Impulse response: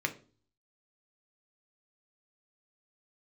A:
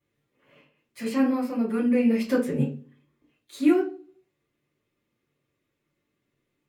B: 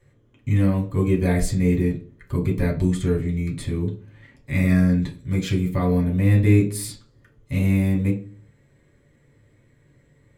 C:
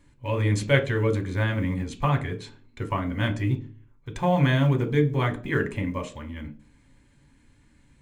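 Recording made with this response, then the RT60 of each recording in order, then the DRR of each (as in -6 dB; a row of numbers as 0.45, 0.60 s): C; 0.40, 0.40, 0.40 s; -10.5, -2.0, 5.0 dB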